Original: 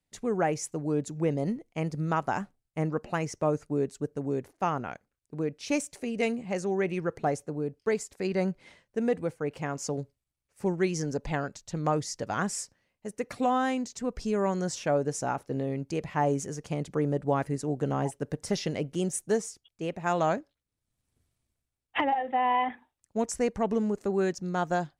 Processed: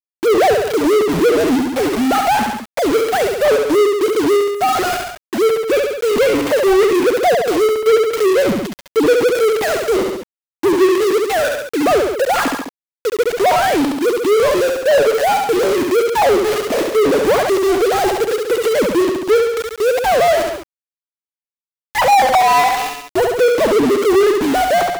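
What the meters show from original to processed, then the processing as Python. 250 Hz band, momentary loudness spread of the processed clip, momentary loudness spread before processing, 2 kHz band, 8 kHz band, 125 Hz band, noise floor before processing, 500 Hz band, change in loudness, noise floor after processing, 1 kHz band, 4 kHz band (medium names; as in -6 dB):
+12.0 dB, 6 LU, 7 LU, +17.0 dB, +11.5 dB, -0.5 dB, -85 dBFS, +18.0 dB, +15.5 dB, under -85 dBFS, +15.0 dB, +19.5 dB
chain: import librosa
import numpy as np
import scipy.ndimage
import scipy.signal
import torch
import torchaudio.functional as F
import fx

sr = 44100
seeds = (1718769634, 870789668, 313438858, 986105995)

y = fx.sine_speech(x, sr)
y = fx.peak_eq(y, sr, hz=500.0, db=6.0, octaves=1.9)
y = y + 10.0 ** (-23.0 / 20.0) * np.pad(y, (int(261 * sr / 1000.0), 0))[:len(y)]
y = np.where(np.abs(y) >= 10.0 ** (-37.5 / 20.0), y, 0.0)
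y = fx.echo_feedback(y, sr, ms=69, feedback_pct=29, wet_db=-9.5)
y = fx.power_curve(y, sr, exponent=0.35)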